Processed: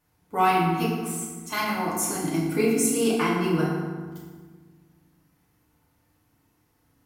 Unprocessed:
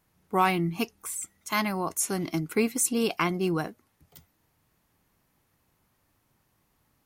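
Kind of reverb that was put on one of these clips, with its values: FDN reverb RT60 1.5 s, low-frequency decay 1.5×, high-frequency decay 0.6×, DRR -6 dB; gain -4.5 dB

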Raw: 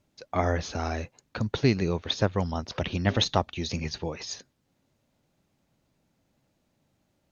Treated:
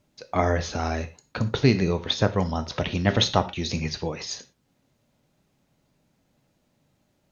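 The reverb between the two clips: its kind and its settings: non-linear reverb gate 0.14 s falling, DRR 9 dB; gain +3 dB

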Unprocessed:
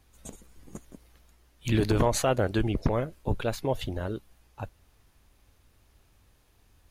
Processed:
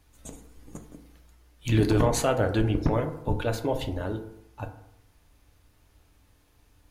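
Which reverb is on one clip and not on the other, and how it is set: FDN reverb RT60 0.77 s, low-frequency decay 1×, high-frequency decay 0.4×, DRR 5 dB

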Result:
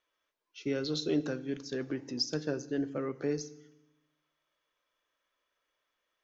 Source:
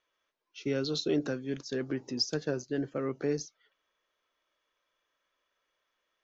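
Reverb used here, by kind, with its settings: FDN reverb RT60 0.92 s, low-frequency decay 1.35×, high-frequency decay 0.9×, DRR 14 dB; gain -2 dB

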